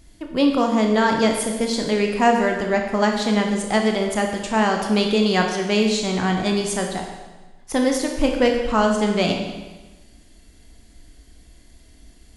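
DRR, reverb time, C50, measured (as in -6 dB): 2.0 dB, 1.2 s, 4.5 dB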